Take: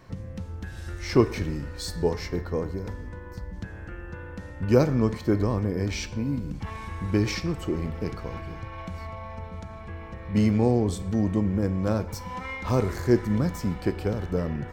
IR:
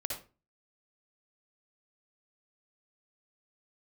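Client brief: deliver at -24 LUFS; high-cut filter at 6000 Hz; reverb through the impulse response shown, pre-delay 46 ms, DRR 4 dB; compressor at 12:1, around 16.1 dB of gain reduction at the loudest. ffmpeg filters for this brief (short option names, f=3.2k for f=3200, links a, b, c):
-filter_complex "[0:a]lowpass=6k,acompressor=threshold=-30dB:ratio=12,asplit=2[a][b];[1:a]atrim=start_sample=2205,adelay=46[c];[b][c]afir=irnorm=-1:irlink=0,volume=-6dB[d];[a][d]amix=inputs=2:normalize=0,volume=11dB"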